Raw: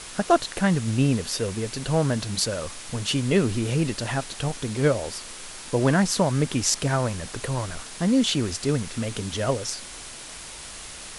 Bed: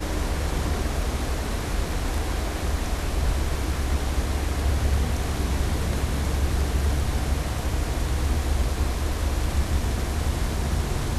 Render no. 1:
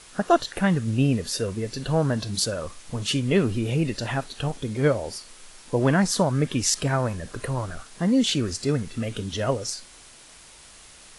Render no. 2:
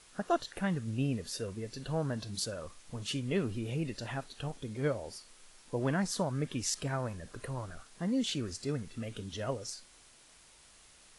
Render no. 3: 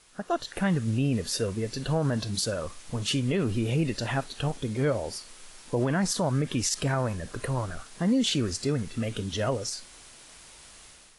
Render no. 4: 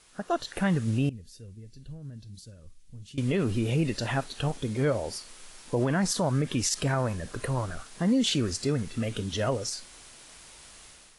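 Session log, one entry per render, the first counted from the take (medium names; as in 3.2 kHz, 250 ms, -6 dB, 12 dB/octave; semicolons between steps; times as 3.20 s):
noise print and reduce 9 dB
trim -11 dB
level rider gain up to 9.5 dB; peak limiter -17 dBFS, peak gain reduction 9.5 dB
1.09–3.18 s: amplifier tone stack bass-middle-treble 10-0-1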